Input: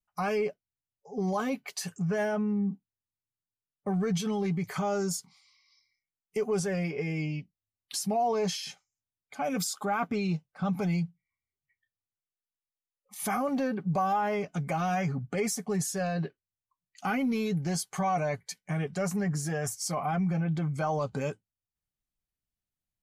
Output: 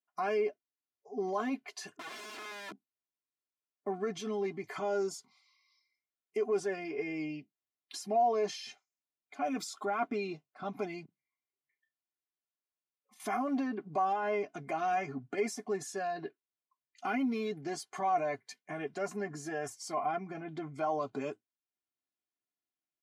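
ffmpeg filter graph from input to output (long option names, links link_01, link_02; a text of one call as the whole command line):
ffmpeg -i in.wav -filter_complex "[0:a]asettb=1/sr,asplit=3[link_01][link_02][link_03];[link_01]atrim=end=1.964[link_04];[link_02]atrim=start=1.96:end=2.72,asetpts=PTS-STARTPTS,afade=type=in:duration=0.004:curve=qsin,afade=type=out:start_time=0.756:duration=0.004:curve=qsin,lowpass=frequency=1700:width=0.5412,lowpass=frequency=1700:width=1.3066,equalizer=frequency=480:width=2.2:gain=-3,aeval=exprs='(mod(59.6*val(0)+1,2)-1)/59.6':channel_layout=same[link_05];[link_03]atrim=start=2.716[link_06];[link_04][link_05]acrossfade=duration=0.004:curve1=hsin:curve2=qsin[link_07];[link_07][link_06]acrossfade=duration=0.004:curve1=qsin:curve2=hsin,asettb=1/sr,asplit=3[link_08][link_09][link_10];[link_08]atrim=end=11.054[link_11];[link_09]atrim=start=11.05:end=13.2,asetpts=PTS-STARTPTS,afade=type=in:duration=0.004:curve=qsin,afade=type=out:start_time=2.146:duration=0.004:curve=qsin,asplit=2[link_12][link_13];[link_13]adelay=36,volume=-10dB[link_14];[link_12][link_14]amix=inputs=2:normalize=0,atrim=end_sample=94815,acompressor=threshold=-51dB:ratio=3:attack=3.2:release=140:knee=1:detection=peak[link_15];[link_10]atrim=start=13.196[link_16];[link_11][link_15]acrossfade=duration=0.004:curve1=hsin:curve2=qsin[link_17];[link_17][link_16]acrossfade=duration=0.004:curve1=qsin:curve2=hsin,highpass=frequency=160:width=0.5412,highpass=frequency=160:width=1.3066,aemphasis=mode=reproduction:type=50fm,aecho=1:1:2.9:0.87,volume=-5dB" out.wav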